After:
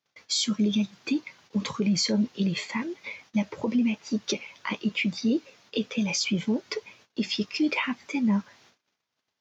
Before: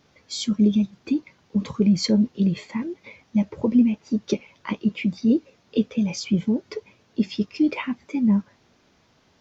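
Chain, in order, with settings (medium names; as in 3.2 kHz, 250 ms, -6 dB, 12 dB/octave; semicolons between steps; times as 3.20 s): high-pass 85 Hz 24 dB/octave; gate -57 dBFS, range -27 dB; tilt shelf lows -7 dB, about 640 Hz; peak limiter -18 dBFS, peak gain reduction 11.5 dB; trim +1 dB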